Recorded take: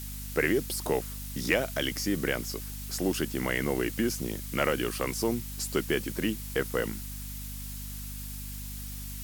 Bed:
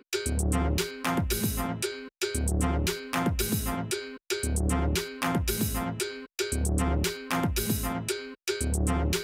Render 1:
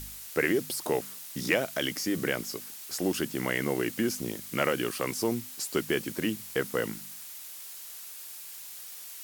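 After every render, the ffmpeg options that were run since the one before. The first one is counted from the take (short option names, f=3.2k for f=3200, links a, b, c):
-af "bandreject=f=50:t=h:w=4,bandreject=f=100:t=h:w=4,bandreject=f=150:t=h:w=4,bandreject=f=200:t=h:w=4,bandreject=f=250:t=h:w=4"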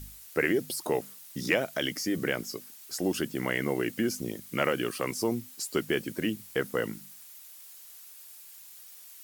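-af "afftdn=nr=8:nf=-44"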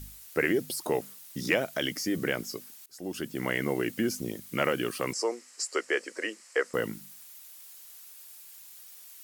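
-filter_complex "[0:a]asettb=1/sr,asplit=3[a][b][c];[a]atrim=end=5.134[d];[b]atrim=start=5.13:end=6.74,asetpts=PTS-STARTPTS,afade=t=in:d=0.004:c=qsin,afade=t=out:st=1.606:d=0.004:c=qsin,highpass=f=400:w=0.5412,highpass=f=400:w=1.3066,equalizer=f=500:t=q:w=4:g=5,equalizer=f=1.2k:t=q:w=4:g=5,equalizer=f=1.9k:t=q:w=4:g=7,equalizer=f=3.5k:t=q:w=4:g=-9,equalizer=f=5.1k:t=q:w=4:g=5,equalizer=f=7.6k:t=q:w=4:g=6,lowpass=f=8.3k:w=0.5412,lowpass=f=8.3k:w=1.3066[e];[c]atrim=start=6.736[f];[d][e]acrossfade=d=0.004:c1=hsin:c2=qsin[g];[g][f]acrossfade=d=0.004:c1=qsin:c2=hsin,asplit=2[h][i];[h]atrim=end=2.86,asetpts=PTS-STARTPTS,afade=t=out:st=2.856:d=0.004:c=hsin:silence=0.0794328[j];[i]atrim=start=2.86,asetpts=PTS-STARTPTS,afade=t=in:d=0.62:silence=0.0794328[k];[j][k]concat=n=2:v=0:a=1"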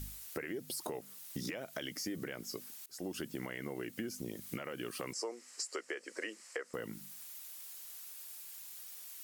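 -af "alimiter=limit=-21dB:level=0:latency=1:release=448,acompressor=threshold=-37dB:ratio=6"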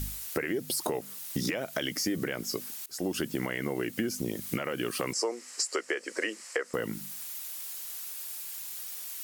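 -af "volume=9.5dB"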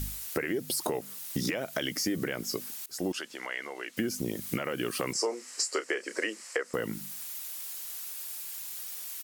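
-filter_complex "[0:a]asettb=1/sr,asplit=3[a][b][c];[a]atrim=end=3.124[d];[b]atrim=start=3.12:end=3.97,asetpts=PTS-STARTPTS,afade=t=in:d=0.004:c=qsin,afade=t=out:st=0.846:d=0.004:c=qsin,highpass=710,lowpass=7.2k[e];[c]atrim=start=3.966[f];[d][e]acrossfade=d=0.004:c1=hsin:c2=qsin[g];[g][f]acrossfade=d=0.004:c1=qsin:c2=hsin,asplit=3[h][i][j];[h]afade=t=out:st=5.14:d=0.02[k];[i]asplit=2[l][m];[m]adelay=31,volume=-10dB[n];[l][n]amix=inputs=2:normalize=0,afade=t=in:st=5.14:d=0.02,afade=t=out:st=6.2:d=0.02[o];[j]afade=t=in:st=6.2:d=0.02[p];[k][o][p]amix=inputs=3:normalize=0"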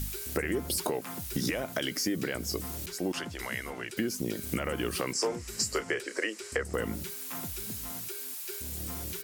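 -filter_complex "[1:a]volume=-14.5dB[a];[0:a][a]amix=inputs=2:normalize=0"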